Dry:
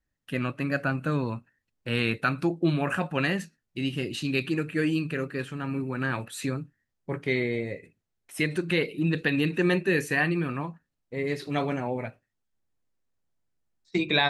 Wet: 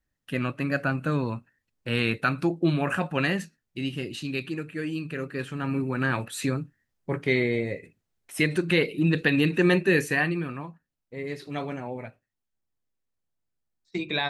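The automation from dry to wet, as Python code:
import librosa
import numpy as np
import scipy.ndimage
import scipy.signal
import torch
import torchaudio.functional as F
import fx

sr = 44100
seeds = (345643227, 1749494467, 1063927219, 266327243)

y = fx.gain(x, sr, db=fx.line((3.42, 1.0), (4.84, -6.0), (5.66, 3.0), (9.97, 3.0), (10.61, -4.5)))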